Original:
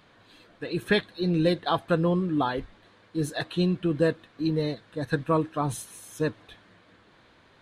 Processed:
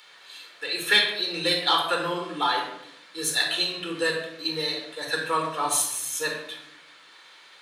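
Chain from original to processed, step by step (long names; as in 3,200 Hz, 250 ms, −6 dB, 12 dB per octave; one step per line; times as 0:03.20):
meter weighting curve A
rectangular room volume 2,000 cubic metres, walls furnished, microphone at 4.3 metres
in parallel at −8 dB: soft clipping −17 dBFS, distortion −16 dB
on the sum: spectral tilt +4.5 dB per octave
level −2.5 dB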